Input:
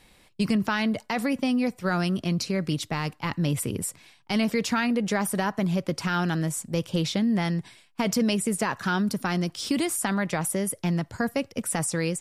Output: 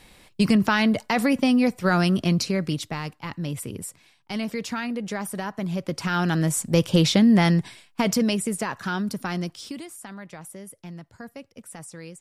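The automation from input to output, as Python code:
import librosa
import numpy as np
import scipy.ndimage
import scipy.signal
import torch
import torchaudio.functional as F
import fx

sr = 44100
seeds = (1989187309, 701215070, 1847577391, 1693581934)

y = fx.gain(x, sr, db=fx.line((2.29, 5.0), (3.22, -4.5), (5.51, -4.5), (6.75, 7.5), (7.51, 7.5), (8.67, -2.0), (9.46, -2.0), (9.86, -13.5)))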